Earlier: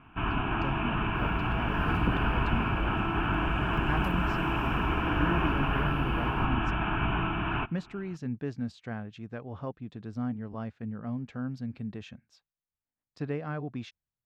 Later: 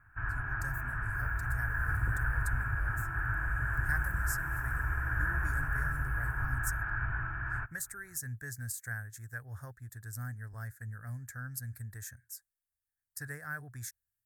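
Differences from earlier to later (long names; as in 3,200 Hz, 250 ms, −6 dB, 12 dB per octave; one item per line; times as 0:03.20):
speech: remove low-pass filter 2,100 Hz 12 dB per octave
first sound −3.5 dB
master: add drawn EQ curve 120 Hz 0 dB, 190 Hz −23 dB, 1,100 Hz −11 dB, 1,700 Hz +9 dB, 2,800 Hz −30 dB, 9,200 Hz +8 dB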